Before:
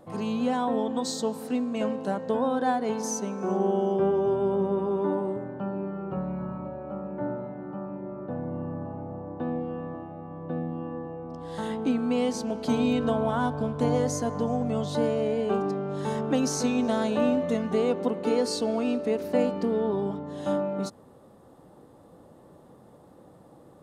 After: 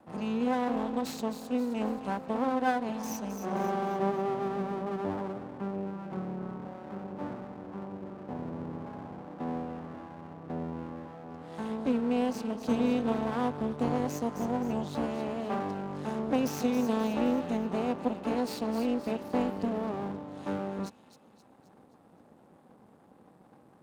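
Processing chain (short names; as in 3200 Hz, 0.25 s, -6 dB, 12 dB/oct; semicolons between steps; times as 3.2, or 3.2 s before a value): tracing distortion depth 0.087 ms; small resonant body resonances 220/780/2600 Hz, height 10 dB, ringing for 25 ms; on a send: thin delay 0.263 s, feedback 47%, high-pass 2200 Hz, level -8 dB; on the sum: half-wave rectifier; HPF 96 Hz 12 dB/oct; gain -6 dB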